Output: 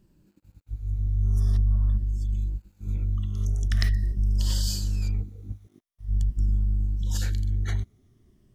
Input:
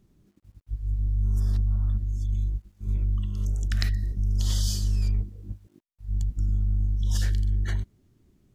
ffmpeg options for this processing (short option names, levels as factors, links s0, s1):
-af "afftfilt=real='re*pow(10,7/40*sin(2*PI*(1.3*log(max(b,1)*sr/1024/100)/log(2)-(-0.45)*(pts-256)/sr)))':imag='im*pow(10,7/40*sin(2*PI*(1.3*log(max(b,1)*sr/1024/100)/log(2)-(-0.45)*(pts-256)/sr)))':win_size=1024:overlap=0.75"